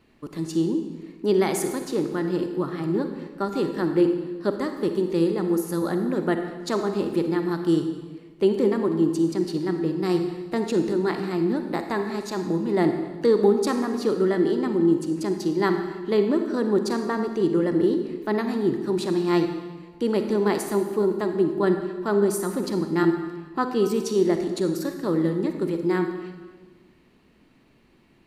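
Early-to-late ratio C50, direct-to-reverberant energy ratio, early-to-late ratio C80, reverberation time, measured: 6.5 dB, 6.0 dB, 8.5 dB, 1.3 s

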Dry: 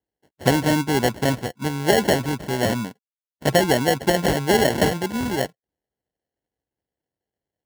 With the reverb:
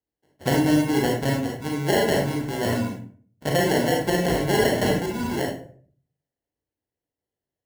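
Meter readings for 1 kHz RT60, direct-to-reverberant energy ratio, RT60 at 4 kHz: 0.45 s, -1.5 dB, 0.30 s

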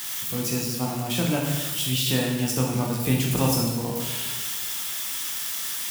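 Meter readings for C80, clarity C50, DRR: 4.5 dB, 2.5 dB, -2.0 dB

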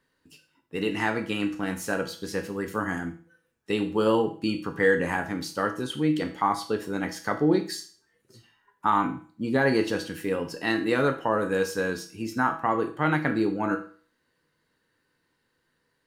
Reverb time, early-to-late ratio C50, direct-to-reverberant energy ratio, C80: 0.40 s, 11.5 dB, 5.0 dB, 15.5 dB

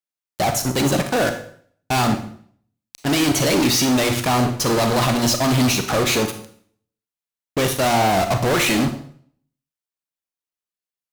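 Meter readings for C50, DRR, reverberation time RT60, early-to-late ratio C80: 9.0 dB, 7.0 dB, 0.55 s, 13.0 dB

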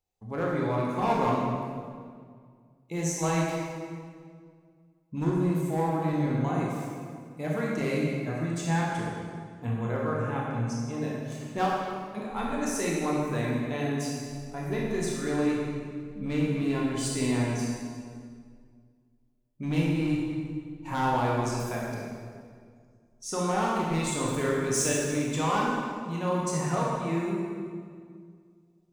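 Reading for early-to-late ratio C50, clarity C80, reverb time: -1.0 dB, 0.5 dB, 2.0 s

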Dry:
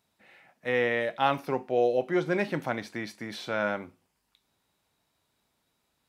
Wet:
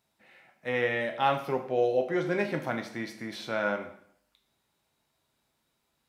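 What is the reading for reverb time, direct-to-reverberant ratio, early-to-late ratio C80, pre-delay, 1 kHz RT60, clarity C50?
0.65 s, 5.0 dB, 13.0 dB, 4 ms, 0.65 s, 10.0 dB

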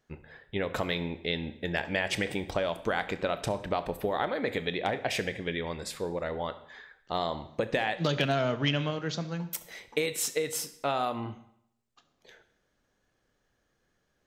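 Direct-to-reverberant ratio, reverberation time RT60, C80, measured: 11.0 dB, 0.70 s, 16.5 dB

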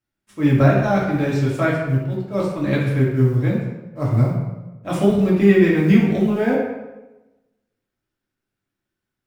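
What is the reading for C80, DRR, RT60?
4.5 dB, -6.5 dB, 1.1 s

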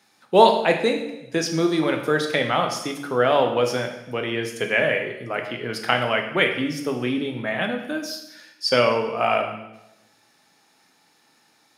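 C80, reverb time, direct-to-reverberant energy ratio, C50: 9.5 dB, 0.90 s, 3.5 dB, 7.0 dB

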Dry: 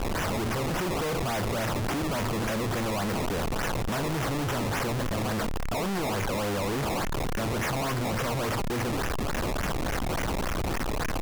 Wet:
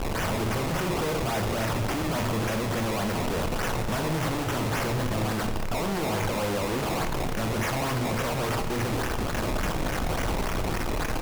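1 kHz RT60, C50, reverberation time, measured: 1.4 s, 7.5 dB, 1.5 s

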